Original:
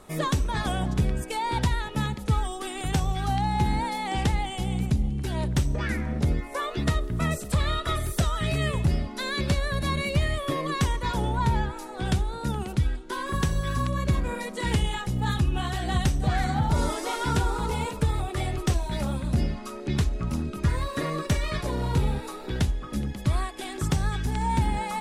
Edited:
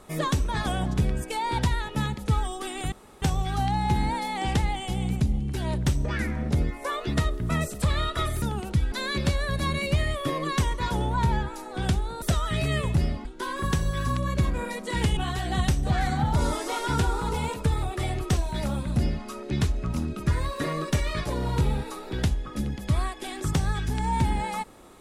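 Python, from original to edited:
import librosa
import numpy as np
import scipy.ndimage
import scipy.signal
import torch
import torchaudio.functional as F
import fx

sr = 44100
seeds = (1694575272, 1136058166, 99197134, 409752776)

y = fx.edit(x, sr, fx.insert_room_tone(at_s=2.92, length_s=0.3),
    fx.swap(start_s=8.12, length_s=1.03, other_s=12.45, other_length_s=0.5),
    fx.cut(start_s=14.87, length_s=0.67), tone=tone)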